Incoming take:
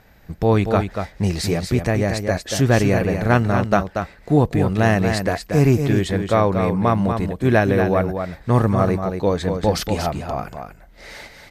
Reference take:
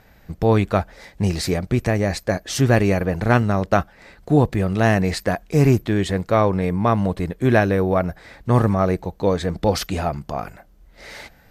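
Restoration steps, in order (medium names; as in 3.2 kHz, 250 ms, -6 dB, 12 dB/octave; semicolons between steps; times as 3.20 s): inverse comb 235 ms -6.5 dB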